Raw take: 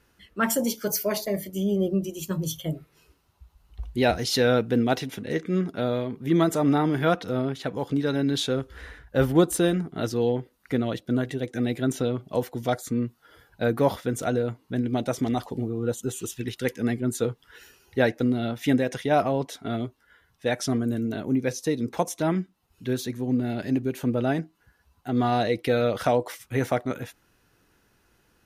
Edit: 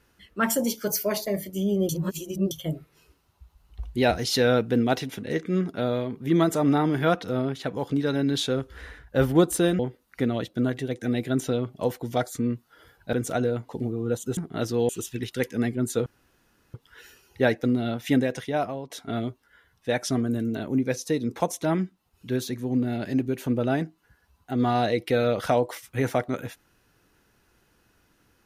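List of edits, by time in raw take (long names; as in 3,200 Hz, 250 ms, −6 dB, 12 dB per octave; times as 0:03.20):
0:01.89–0:02.51: reverse
0:09.79–0:10.31: move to 0:16.14
0:13.65–0:14.05: remove
0:14.61–0:15.46: remove
0:17.31: splice in room tone 0.68 s
0:18.78–0:19.47: fade out, to −13.5 dB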